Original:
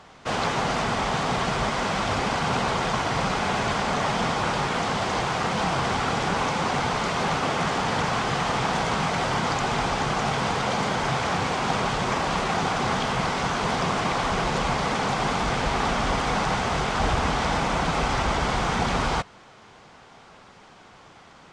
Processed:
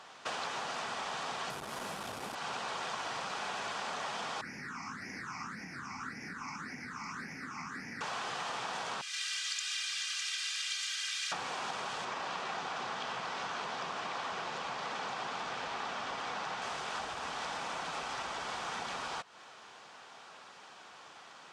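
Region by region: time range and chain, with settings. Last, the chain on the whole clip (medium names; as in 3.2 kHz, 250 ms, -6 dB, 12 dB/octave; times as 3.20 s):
1.50–2.35 s: one-bit delta coder 64 kbps, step -26 dBFS + bass shelf 440 Hz +12 dB + transformer saturation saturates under 240 Hz
4.41–8.01 s: FFT filter 160 Hz 0 dB, 260 Hz +6 dB, 390 Hz -7 dB, 610 Hz -16 dB, 1.1 kHz -7 dB, 2.1 kHz +1 dB, 3.2 kHz -28 dB, 5.3 kHz -5 dB, 8.2 kHz -14 dB, 12 kHz 0 dB + phase shifter stages 8, 1.8 Hz, lowest notch 480–1200 Hz
9.01–11.32 s: Bessel high-pass 3 kHz, order 6 + comb 2.5 ms, depth 81%
12.05–16.62 s: high-pass 57 Hz + distance through air 66 m
whole clip: band-stop 2.1 kHz, Q 13; compression, threshold -32 dBFS; high-pass 960 Hz 6 dB/octave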